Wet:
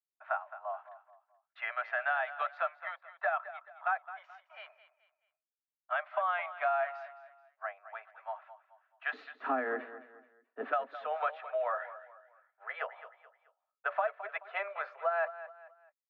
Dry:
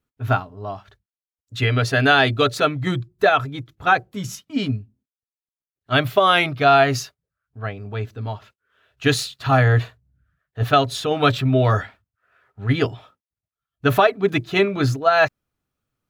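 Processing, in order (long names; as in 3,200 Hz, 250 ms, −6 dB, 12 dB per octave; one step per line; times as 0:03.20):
Butterworth high-pass 620 Hz 72 dB per octave, from 0:09.13 230 Hz, from 0:10.71 540 Hz
downward expander −55 dBFS
low-pass filter 1,900 Hz 24 dB per octave
downward compressor 3 to 1, threshold −25 dBFS, peak gain reduction 11 dB
repeating echo 215 ms, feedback 36%, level −14 dB
level −6 dB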